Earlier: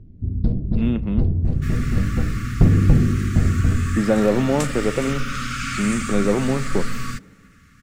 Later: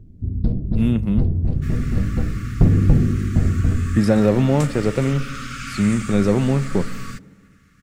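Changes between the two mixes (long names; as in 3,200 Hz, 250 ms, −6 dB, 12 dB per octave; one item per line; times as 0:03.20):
speech: remove band-pass filter 210–3,700 Hz
second sound −4.5 dB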